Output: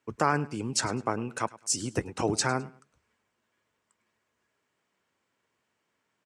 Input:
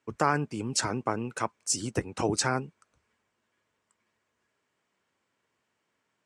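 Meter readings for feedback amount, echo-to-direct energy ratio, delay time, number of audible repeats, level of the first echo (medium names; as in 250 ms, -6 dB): 28%, -19.5 dB, 104 ms, 2, -20.0 dB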